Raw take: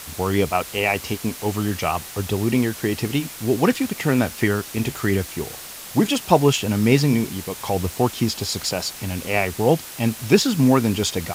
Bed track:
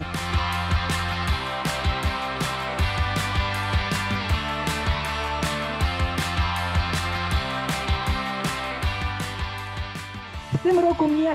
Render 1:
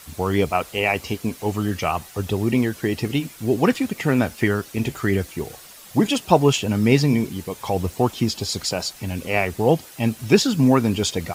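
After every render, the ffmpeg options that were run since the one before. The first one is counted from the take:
-af "afftdn=nr=9:nf=-37"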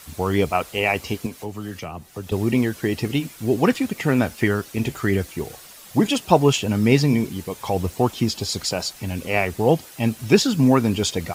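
-filter_complex "[0:a]asettb=1/sr,asplit=3[s0][s1][s2];[s0]atrim=end=1.264[s3];[s1]atrim=start=1.26:end=2.32,asetpts=PTS-STARTPTS,afade=t=in:d=0.004:c=qsin,afade=t=out:st=1.056:d=0.004:c=qsin,acrossover=split=110|420[s4][s5][s6];[s4]acompressor=threshold=0.00631:ratio=4[s7];[s5]acompressor=threshold=0.0251:ratio=4[s8];[s6]acompressor=threshold=0.0141:ratio=4[s9];[s7][s8][s9]amix=inputs=3:normalize=0[s10];[s2]atrim=start=2.316[s11];[s3][s10]acrossfade=d=0.004:c1=hsin:c2=qsin[s12];[s12][s11]acrossfade=d=0.004:c1=qsin:c2=hsin"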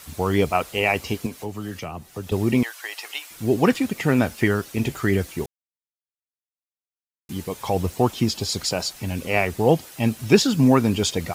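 -filter_complex "[0:a]asettb=1/sr,asplit=3[s0][s1][s2];[s0]atrim=end=2.634[s3];[s1]atrim=start=2.63:end=3.31,asetpts=PTS-STARTPTS,afade=t=in:d=0.004:c=qsin,afade=t=out:st=0.676:d=0.004:c=qsin,highpass=f=770:w=0.5412,highpass=f=770:w=1.3066[s4];[s2]atrim=start=3.306[s5];[s3][s4]acrossfade=d=0.004:c1=hsin:c2=qsin[s6];[s6][s5]acrossfade=d=0.004:c1=qsin:c2=hsin,asplit=3[s7][s8][s9];[s7]atrim=end=5.46,asetpts=PTS-STARTPTS,afade=t=out:st=5.456:d=0.004:c=hsin[s10];[s8]atrim=start=5.46:end=7.29,asetpts=PTS-STARTPTS,volume=0[s11];[s9]atrim=start=7.29,asetpts=PTS-STARTPTS,afade=t=in:d=0.004:c=hsin[s12];[s10][s11][s12]concat=n=3:v=0:a=1"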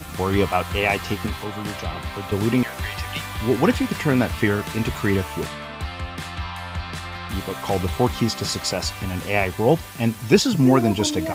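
-filter_complex "[1:a]volume=0.473[s0];[0:a][s0]amix=inputs=2:normalize=0"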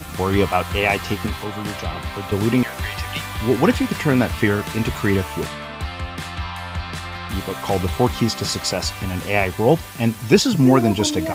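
-af "volume=1.26,alimiter=limit=0.891:level=0:latency=1"

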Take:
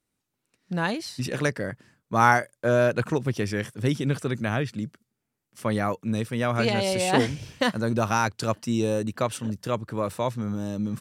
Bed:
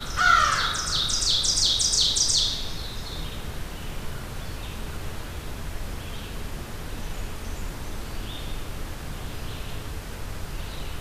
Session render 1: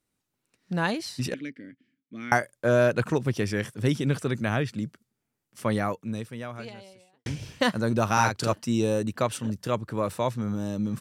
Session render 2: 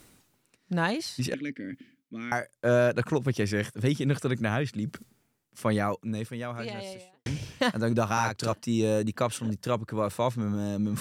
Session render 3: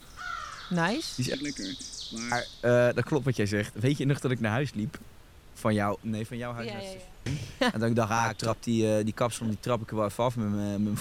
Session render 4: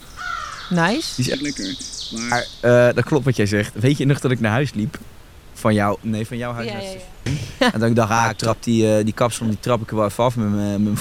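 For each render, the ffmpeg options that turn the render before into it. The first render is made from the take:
-filter_complex "[0:a]asettb=1/sr,asplit=3[s0][s1][s2];[s0]atrim=end=1.344[s3];[s1]atrim=start=1.34:end=2.32,asetpts=PTS-STARTPTS,afade=t=in:d=0.004:c=qsin,afade=t=out:st=0.976:d=0.004:c=qsin,asplit=3[s4][s5][s6];[s4]bandpass=f=270:t=q:w=8,volume=1[s7];[s5]bandpass=f=2290:t=q:w=8,volume=0.501[s8];[s6]bandpass=f=3010:t=q:w=8,volume=0.355[s9];[s7][s8][s9]amix=inputs=3:normalize=0[s10];[s2]atrim=start=2.316[s11];[s3][s10]acrossfade=d=0.004:c1=hsin:c2=qsin[s12];[s12][s11]acrossfade=d=0.004:c1=qsin:c2=hsin,asettb=1/sr,asplit=3[s13][s14][s15];[s13]atrim=end=8.134[s16];[s14]atrim=start=8.13:end=8.53,asetpts=PTS-STARTPTS,afade=t=in:d=0.004:c=qsin,afade=t=out:st=0.396:d=0.004:c=qsin,asplit=2[s17][s18];[s18]adelay=42,volume=0.631[s19];[s17][s19]amix=inputs=2:normalize=0,atrim=end_sample=17640[s20];[s15]atrim=start=8.526[s21];[s16][s20]acrossfade=d=0.004:c1=hsin:c2=qsin[s22];[s22][s21]acrossfade=d=0.004:c1=qsin:c2=hsin,asplit=2[s23][s24];[s23]atrim=end=7.26,asetpts=PTS-STARTPTS,afade=t=out:st=5.71:d=1.55:c=qua[s25];[s24]atrim=start=7.26,asetpts=PTS-STARTPTS,afade=t=in:d=0.004:c=hsin[s26];[s25][s26]concat=n=2:v=0:a=1"
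-af "alimiter=limit=0.211:level=0:latency=1:release=490,areverse,acompressor=mode=upward:threshold=0.0355:ratio=2.5,areverse"
-filter_complex "[1:a]volume=0.119[s0];[0:a][s0]amix=inputs=2:normalize=0"
-af "volume=2.99"

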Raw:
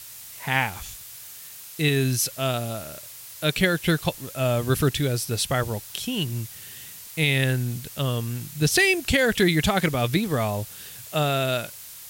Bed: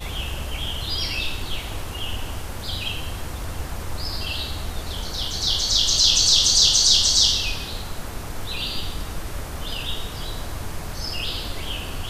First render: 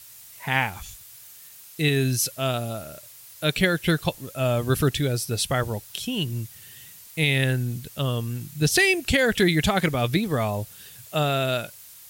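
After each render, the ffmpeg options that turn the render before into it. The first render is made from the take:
-af "afftdn=nr=6:nf=-42"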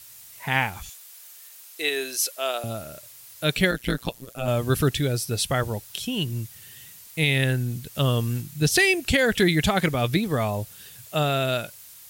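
-filter_complex "[0:a]asettb=1/sr,asplit=3[s0][s1][s2];[s0]atrim=end=0.894[s3];[s1]atrim=start=0.89:end=2.64,asetpts=PTS-STARTPTS,afade=t=in:d=0.004:c=qsin,afade=t=out:st=1.746:d=0.004:c=qsin,highpass=f=400:w=0.5412,highpass=f=400:w=1.3066[s4];[s2]atrim=start=2.636[s5];[s3][s4]acrossfade=d=0.004:c1=hsin:c2=qsin[s6];[s6][s5]acrossfade=d=0.004:c1=qsin:c2=hsin,asettb=1/sr,asplit=3[s7][s8][s9];[s7]atrim=end=3.714[s10];[s8]atrim=start=3.71:end=4.48,asetpts=PTS-STARTPTS,afade=t=in:d=0.004:c=qsin,afade=t=out:st=0.766:d=0.004:c=qsin,tremolo=f=120:d=1[s11];[s9]atrim=start=4.476[s12];[s10][s11]acrossfade=d=0.004:c1=hsin:c2=qsin[s13];[s13][s12]acrossfade=d=0.004:c1=qsin:c2=hsin,asplit=3[s14][s15][s16];[s14]atrim=end=7.952[s17];[s15]atrim=start=7.948:end=8.412,asetpts=PTS-STARTPTS,volume=1.5[s18];[s16]atrim=start=8.408[s19];[s17][s18]acrossfade=d=0.004:c1=hsin:c2=hsin[s20];[s20][s19]acrossfade=d=0.004:c1=hsin:c2=hsin"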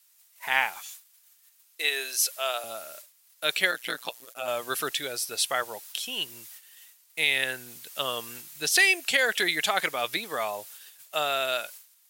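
-af "agate=range=0.158:threshold=0.00708:ratio=16:detection=peak,highpass=710"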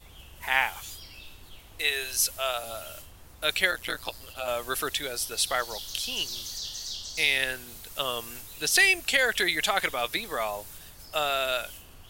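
-filter_complex "[1:a]volume=0.0944[s0];[0:a][s0]amix=inputs=2:normalize=0"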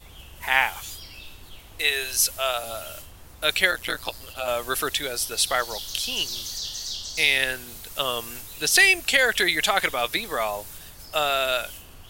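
-af "volume=1.58"

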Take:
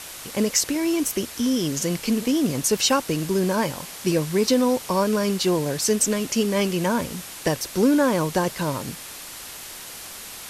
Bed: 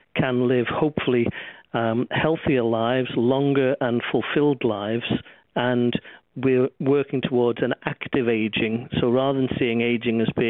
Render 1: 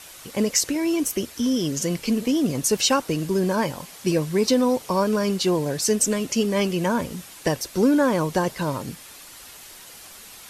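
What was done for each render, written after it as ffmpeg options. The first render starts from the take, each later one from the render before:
-af "afftdn=nr=7:nf=-38"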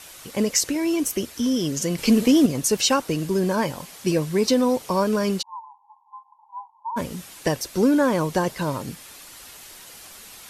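-filter_complex "[0:a]asettb=1/sr,asplit=3[s0][s1][s2];[s0]atrim=end=1.984[s3];[s1]atrim=start=1.98:end=2.46,asetpts=PTS-STARTPTS,afade=t=in:d=0.004:c=qsin,afade=t=out:st=0.476:d=0.004:c=qsin,acontrast=45[s4];[s2]atrim=start=2.456[s5];[s3][s4]acrossfade=d=0.004:c1=hsin:c2=qsin[s6];[s6][s5]acrossfade=d=0.004:c1=qsin:c2=hsin,asplit=3[s7][s8][s9];[s7]afade=t=out:st=5.41:d=0.02[s10];[s8]asuperpass=centerf=920:order=12:qfactor=3.7,afade=t=in:st=5.41:d=0.02,afade=t=out:st=6.96:d=0.02[s11];[s9]afade=t=in:st=6.96:d=0.02[s12];[s10][s11][s12]amix=inputs=3:normalize=0"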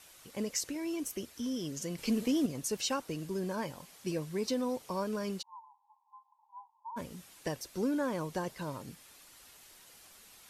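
-af "volume=0.211"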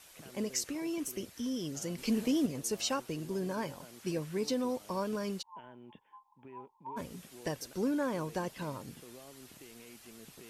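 -filter_complex "[1:a]volume=0.0237[s0];[0:a][s0]amix=inputs=2:normalize=0"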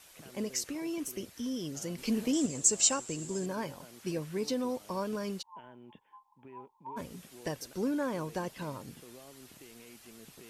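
-filter_complex "[0:a]asettb=1/sr,asplit=3[s0][s1][s2];[s0]atrim=end=2.334[s3];[s1]atrim=start=2.33:end=3.46,asetpts=PTS-STARTPTS,afade=t=in:d=0.004:c=qsin,afade=t=out:st=1.126:d=0.004:c=qsin,lowpass=f=7500:t=q:w=14[s4];[s2]atrim=start=3.456[s5];[s3][s4]acrossfade=d=0.004:c1=hsin:c2=qsin[s6];[s6][s5]acrossfade=d=0.004:c1=qsin:c2=hsin"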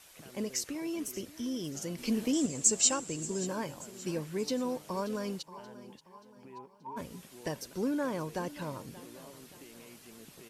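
-af "aecho=1:1:580|1160|1740|2320:0.141|0.065|0.0299|0.0137"

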